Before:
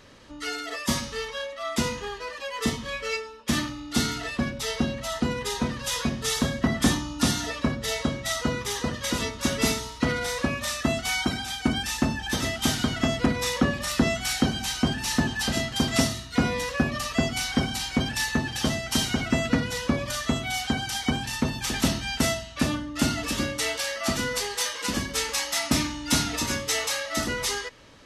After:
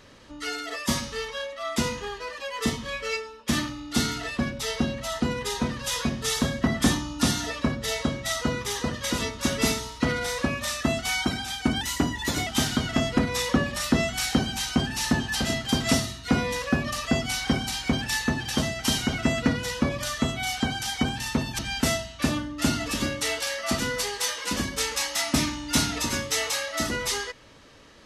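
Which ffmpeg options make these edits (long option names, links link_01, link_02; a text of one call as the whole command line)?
ffmpeg -i in.wav -filter_complex "[0:a]asplit=4[link_01][link_02][link_03][link_04];[link_01]atrim=end=11.814[link_05];[link_02]atrim=start=11.81:end=12.54,asetpts=PTS-STARTPTS,asetrate=48951,aresample=44100[link_06];[link_03]atrim=start=12.536:end=21.662[link_07];[link_04]atrim=start=21.958[link_08];[link_05][link_06]acrossfade=duration=0.004:curve1=hsin:curve2=hsin[link_09];[link_09][link_07]acrossfade=duration=0.004:curve1=hsin:curve2=hsin[link_10];[link_10][link_08]acrossfade=duration=0.004:curve1=hsin:curve2=hsin" out.wav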